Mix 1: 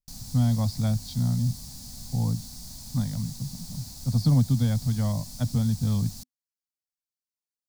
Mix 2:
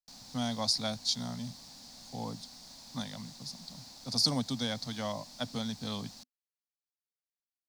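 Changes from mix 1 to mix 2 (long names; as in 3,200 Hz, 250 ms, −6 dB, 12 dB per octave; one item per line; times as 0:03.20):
speech: remove high-frequency loss of the air 450 metres
master: add three-way crossover with the lows and the highs turned down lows −23 dB, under 280 Hz, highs −18 dB, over 5,100 Hz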